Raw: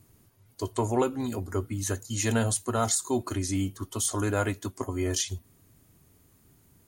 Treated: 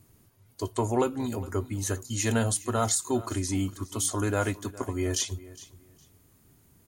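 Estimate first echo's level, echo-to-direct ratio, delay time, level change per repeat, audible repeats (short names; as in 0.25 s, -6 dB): -18.5 dB, -18.5 dB, 0.411 s, -14.0 dB, 2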